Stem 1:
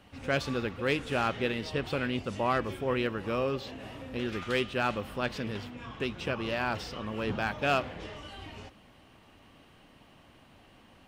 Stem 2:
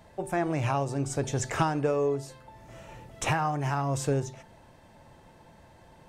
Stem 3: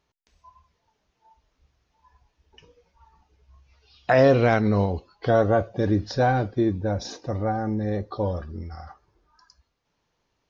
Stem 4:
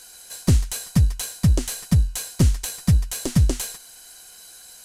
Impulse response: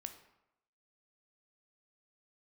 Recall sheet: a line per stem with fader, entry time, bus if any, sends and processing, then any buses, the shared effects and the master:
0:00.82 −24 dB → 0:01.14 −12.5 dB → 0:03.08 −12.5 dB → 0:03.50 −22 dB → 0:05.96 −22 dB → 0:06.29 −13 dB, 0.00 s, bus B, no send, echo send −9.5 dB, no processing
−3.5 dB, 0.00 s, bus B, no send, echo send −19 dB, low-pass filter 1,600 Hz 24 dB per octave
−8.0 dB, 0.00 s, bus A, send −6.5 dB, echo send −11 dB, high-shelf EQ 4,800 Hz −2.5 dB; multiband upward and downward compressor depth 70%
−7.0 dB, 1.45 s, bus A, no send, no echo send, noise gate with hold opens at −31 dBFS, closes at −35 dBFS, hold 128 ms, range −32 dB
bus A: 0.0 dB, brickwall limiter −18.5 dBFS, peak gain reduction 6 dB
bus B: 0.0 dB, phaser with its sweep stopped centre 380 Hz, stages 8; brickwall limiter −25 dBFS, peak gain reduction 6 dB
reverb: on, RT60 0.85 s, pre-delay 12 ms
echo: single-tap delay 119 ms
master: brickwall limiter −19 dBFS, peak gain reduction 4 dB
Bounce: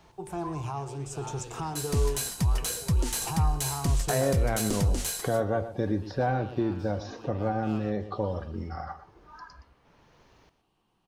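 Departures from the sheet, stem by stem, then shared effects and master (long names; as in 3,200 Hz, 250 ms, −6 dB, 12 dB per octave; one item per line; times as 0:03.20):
stem 2: missing low-pass filter 1,600 Hz 24 dB per octave
stem 4 −7.0 dB → +1.0 dB
master: missing brickwall limiter −19 dBFS, peak gain reduction 4 dB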